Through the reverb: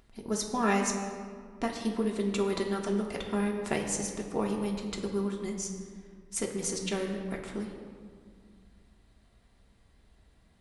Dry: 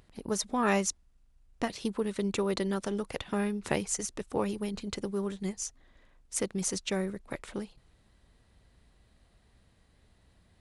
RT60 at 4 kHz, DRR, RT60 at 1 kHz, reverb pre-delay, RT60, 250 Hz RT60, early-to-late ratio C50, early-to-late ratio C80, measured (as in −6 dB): 1.1 s, 0.0 dB, 1.9 s, 3 ms, 2.0 s, 2.8 s, 5.0 dB, 6.5 dB